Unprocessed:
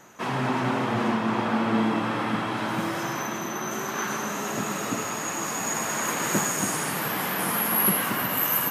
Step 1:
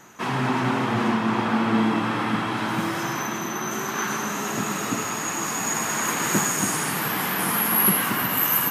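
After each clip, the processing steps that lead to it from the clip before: bell 570 Hz -5.5 dB 0.59 oct; gain +3 dB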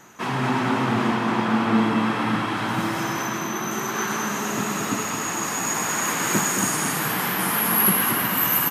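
echo 0.22 s -6 dB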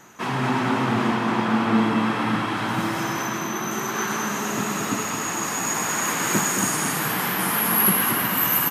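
nothing audible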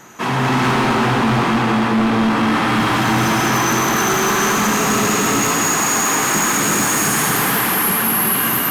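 non-linear reverb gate 0.48 s rising, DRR -6.5 dB; vocal rider within 5 dB 0.5 s; overloaded stage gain 14 dB; gain +1.5 dB

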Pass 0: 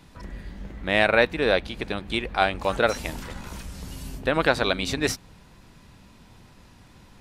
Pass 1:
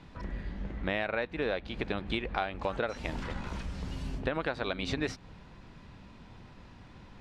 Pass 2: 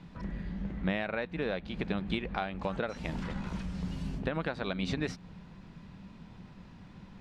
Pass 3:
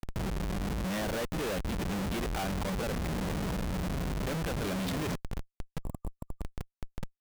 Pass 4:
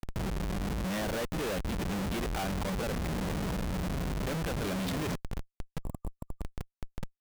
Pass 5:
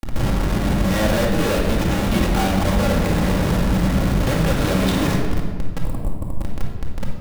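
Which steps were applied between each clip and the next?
Bessel low-pass 3300 Hz, order 2; compressor 10:1, threshold -28 dBFS, peak gain reduction 14.5 dB
bell 180 Hz +11 dB 0.56 oct; gain -2.5 dB
Schmitt trigger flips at -41.5 dBFS; spectral gain 5.83–6.42, 1200–7200 Hz -16 dB; gain +4 dB
nothing audible
shoebox room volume 1500 m³, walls mixed, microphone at 2.3 m; gain +9 dB

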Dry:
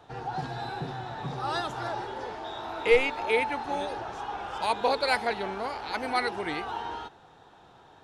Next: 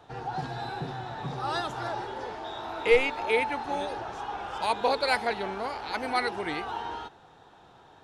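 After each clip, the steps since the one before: nothing audible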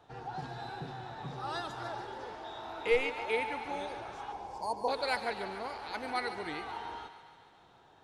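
spectral delete 4.32–4.88, 1100–4200 Hz; on a send: thinning echo 0.143 s, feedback 69%, high-pass 500 Hz, level -11 dB; on the sum: gain -7 dB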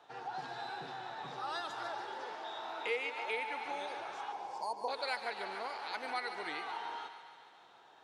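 weighting filter A; compressor 2:1, threshold -39 dBFS, peak gain reduction 8.5 dB; gain +1.5 dB

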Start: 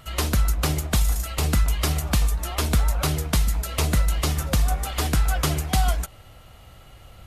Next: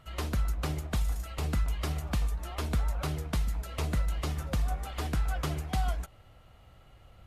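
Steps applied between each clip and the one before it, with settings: high shelf 4000 Hz -9.5 dB; gain -8.5 dB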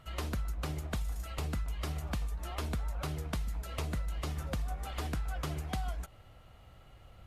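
compressor 4:1, threshold -33 dBFS, peak gain reduction 8 dB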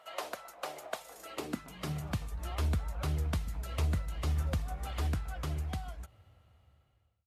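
ending faded out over 2.40 s; high-pass sweep 630 Hz -> 76 Hz, 0.95–2.35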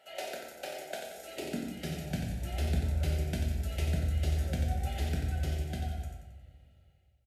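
Butterworth band-stop 1100 Hz, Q 1.5; on a send: feedback echo 90 ms, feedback 46%, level -6.5 dB; on the sum: shoebox room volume 210 m³, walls mixed, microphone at 1.1 m; gain -1.5 dB

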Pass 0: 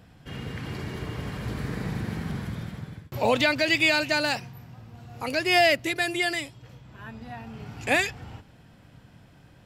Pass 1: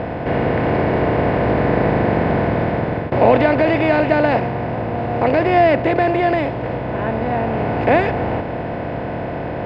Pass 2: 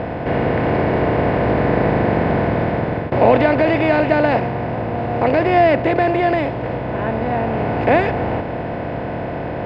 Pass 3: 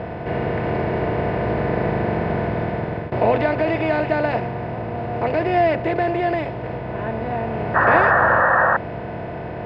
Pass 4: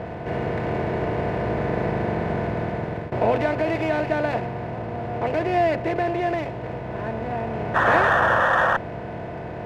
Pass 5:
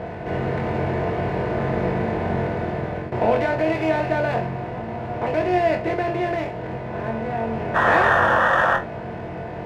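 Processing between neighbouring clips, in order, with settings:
per-bin compression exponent 0.4; LPF 1000 Hz 12 dB/oct; gain +7.5 dB
nothing audible
notch comb 270 Hz; painted sound noise, 7.74–8.77, 480–1900 Hz -12 dBFS; gain -4 dB
running maximum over 3 samples; gain -3 dB
flutter echo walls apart 3.8 m, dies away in 0.23 s

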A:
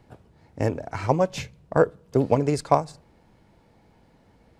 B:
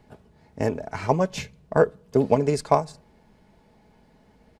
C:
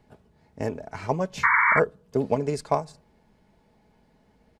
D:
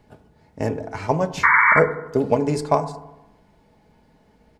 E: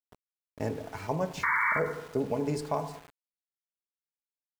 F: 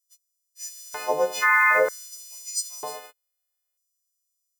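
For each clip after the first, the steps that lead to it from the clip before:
notch 1300 Hz, Q 26; comb 4.7 ms, depth 39%
painted sound noise, 1.43–1.8, 890–2300 Hz -15 dBFS; gain -4.5 dB
FDN reverb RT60 0.97 s, low-frequency decay 1.1×, high-frequency decay 0.3×, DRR 9.5 dB; gain +4.5 dB
limiter -9 dBFS, peak gain reduction 7.5 dB; sample gate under -37 dBFS; gain -8.5 dB
frequency quantiser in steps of 3 st; LFO high-pass square 0.53 Hz 490–6100 Hz; gain +2.5 dB

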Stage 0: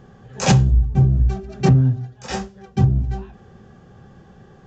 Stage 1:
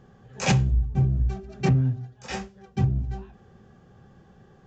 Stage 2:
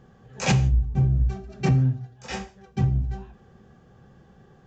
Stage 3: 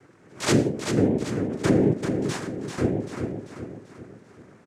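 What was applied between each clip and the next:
dynamic EQ 2300 Hz, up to +7 dB, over -47 dBFS, Q 2.1; gain -7 dB
non-linear reverb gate 0.19 s falling, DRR 11 dB
noise vocoder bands 3; on a send: feedback echo 0.39 s, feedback 46%, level -6.5 dB

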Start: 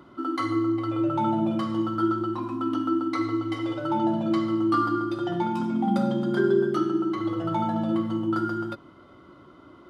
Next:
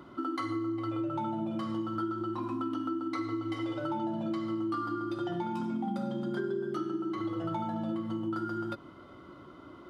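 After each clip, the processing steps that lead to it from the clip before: compressor, threshold -31 dBFS, peak gain reduction 13 dB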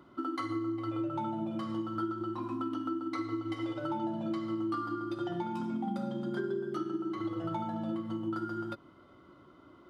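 upward expander 1.5:1, over -44 dBFS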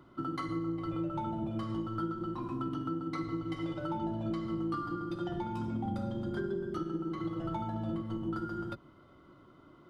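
octaver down 1 oct, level -3 dB; gain -1.5 dB

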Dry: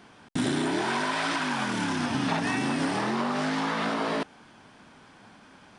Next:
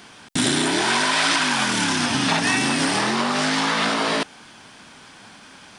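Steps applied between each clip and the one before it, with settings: high shelf 2100 Hz +12 dB; gain +4 dB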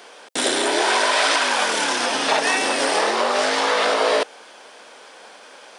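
resonant high-pass 500 Hz, resonance Q 3.5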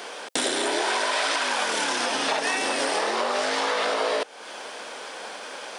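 compressor 3:1, threshold -33 dBFS, peak gain reduction 13.5 dB; gain +6.5 dB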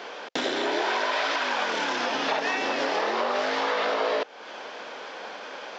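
air absorption 140 m; downsampling 16000 Hz

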